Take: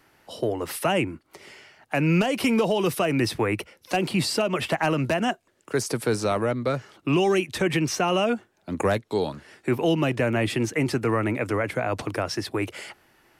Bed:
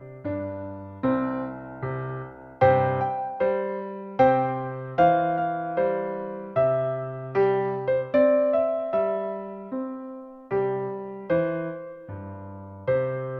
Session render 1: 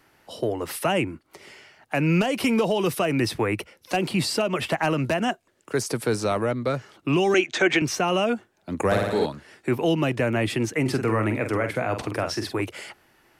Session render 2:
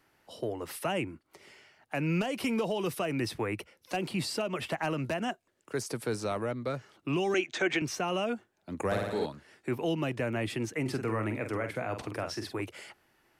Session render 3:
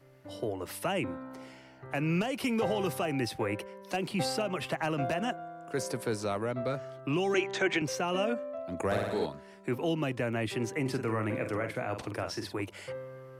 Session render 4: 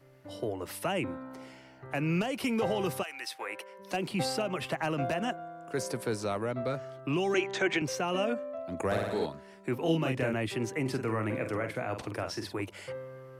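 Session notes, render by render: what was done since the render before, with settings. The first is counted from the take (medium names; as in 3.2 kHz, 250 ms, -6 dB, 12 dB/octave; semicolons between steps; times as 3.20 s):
7.34–7.82 s: cabinet simulation 280–7300 Hz, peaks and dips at 350 Hz +5 dB, 700 Hz +9 dB, 1.5 kHz +9 dB, 2.2 kHz +7 dB, 3.4 kHz +6 dB, 6.6 kHz +8 dB; 8.86–9.26 s: flutter echo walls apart 9.8 m, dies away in 1.2 s; 10.81–12.61 s: doubling 46 ms -7.5 dB
trim -8.5 dB
add bed -17 dB
3.02–3.78 s: high-pass 1.5 kHz -> 480 Hz; 9.82–10.34 s: doubling 31 ms -2 dB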